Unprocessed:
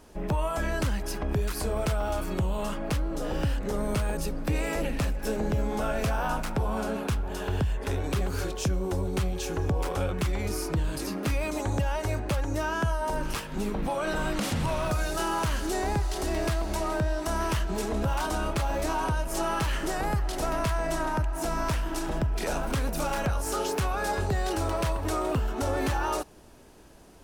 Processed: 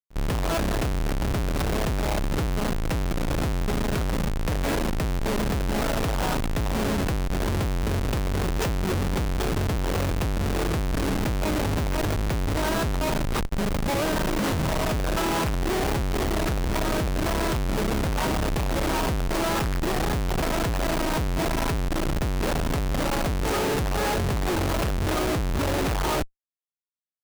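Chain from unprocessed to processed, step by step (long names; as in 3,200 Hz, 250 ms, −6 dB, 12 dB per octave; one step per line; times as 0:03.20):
comparator with hysteresis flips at −29.5 dBFS
backwards echo 53 ms −22 dB
level +4 dB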